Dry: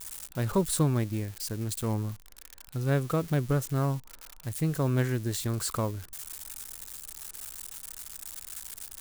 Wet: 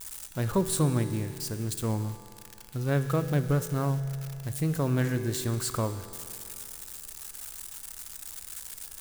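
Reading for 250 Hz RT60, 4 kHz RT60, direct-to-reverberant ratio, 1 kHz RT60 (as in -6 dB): 2.6 s, 2.5 s, 8.5 dB, 2.6 s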